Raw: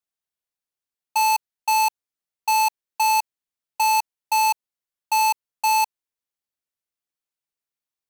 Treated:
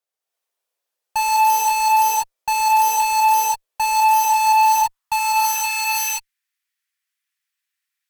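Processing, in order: gated-style reverb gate 360 ms rising, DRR -6.5 dB; high-pass sweep 510 Hz -> 1.8 kHz, 3.84–6.05 s; Chebyshev shaper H 5 -24 dB, 8 -25 dB, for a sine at -11 dBFS; trim -1.5 dB

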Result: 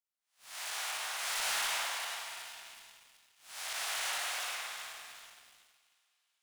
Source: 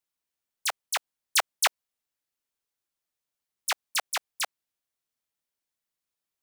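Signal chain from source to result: spectral blur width 331 ms; steep high-pass 160 Hz 96 dB/octave; bass shelf 360 Hz -5.5 dB; on a send: two-band feedback delay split 2.4 kHz, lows 278 ms, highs 374 ms, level -7.5 dB; on the sum: chorus 2.7 Hz, delay 18 ms, depth 2.7 ms; spring tank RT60 2 s, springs 48 ms, chirp 60 ms, DRR -0.5 dB; waveshaping leveller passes 2

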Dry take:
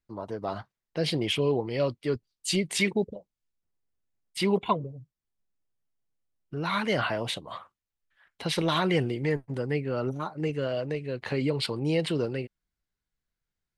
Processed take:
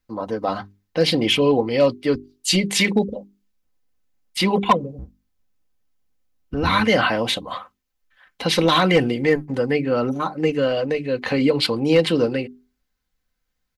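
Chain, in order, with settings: 4.98–6.80 s: octave divider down 1 oct, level +2 dB; peaking EQ 8.6 kHz -6.5 dB 0.24 oct; hum notches 50/100/150/200/250/300/350/400 Hz; comb 3.9 ms, depth 51%; overload inside the chain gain 16.5 dB; trim +9 dB

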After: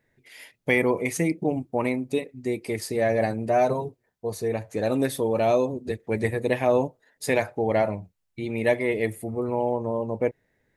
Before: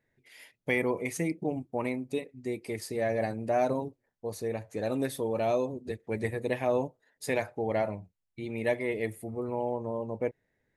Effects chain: 3.45–4.53 s: comb of notches 280 Hz; trim +6.5 dB

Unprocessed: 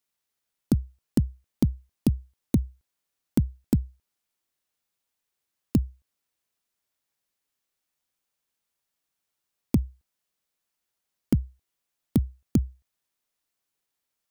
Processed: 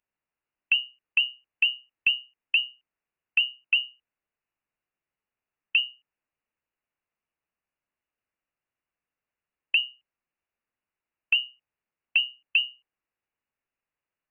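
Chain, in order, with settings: frequency inversion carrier 2.9 kHz; trim -1.5 dB

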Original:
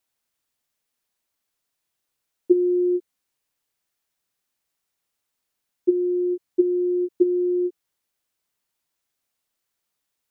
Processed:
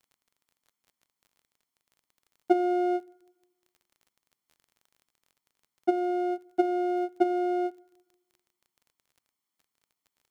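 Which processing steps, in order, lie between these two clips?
comb filter that takes the minimum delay 0.94 ms; high-pass 170 Hz 24 dB/octave; peaking EQ 270 Hz +5 dB 2.7 oct; crackle 29 per s -43 dBFS; reverberation RT60 1.0 s, pre-delay 4 ms, DRR 20 dB; trim -5 dB

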